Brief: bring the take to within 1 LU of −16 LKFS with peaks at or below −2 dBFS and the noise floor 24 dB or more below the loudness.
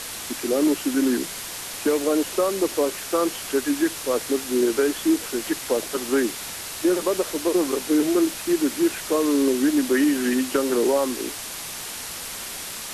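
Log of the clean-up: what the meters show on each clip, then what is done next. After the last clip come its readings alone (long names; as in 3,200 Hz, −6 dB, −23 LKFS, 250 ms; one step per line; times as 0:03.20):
background noise floor −34 dBFS; target noise floor −48 dBFS; integrated loudness −23.5 LKFS; sample peak −10.0 dBFS; target loudness −16.0 LKFS
→ noise reduction from a noise print 14 dB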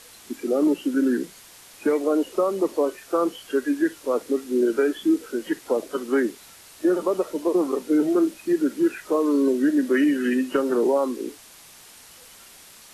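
background noise floor −48 dBFS; integrated loudness −23.5 LKFS; sample peak −10.5 dBFS; target loudness −16.0 LKFS
→ level +7.5 dB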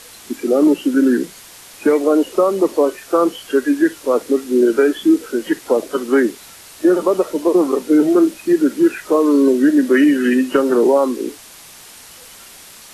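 integrated loudness −16.0 LKFS; sample peak −3.0 dBFS; background noise floor −41 dBFS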